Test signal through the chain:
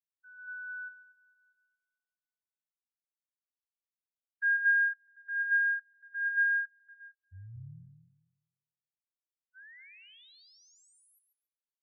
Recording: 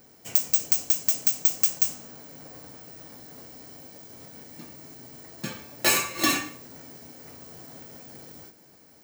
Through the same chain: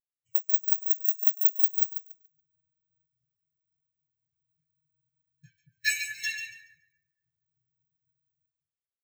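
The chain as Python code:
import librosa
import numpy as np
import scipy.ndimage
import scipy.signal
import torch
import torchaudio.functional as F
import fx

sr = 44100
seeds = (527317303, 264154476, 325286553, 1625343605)

y = fx.brickwall_bandstop(x, sr, low_hz=170.0, high_hz=1500.0)
y = fx.echo_split(y, sr, split_hz=1800.0, low_ms=230, high_ms=142, feedback_pct=52, wet_db=-3.5)
y = fx.spectral_expand(y, sr, expansion=2.5)
y = y * librosa.db_to_amplitude(-4.0)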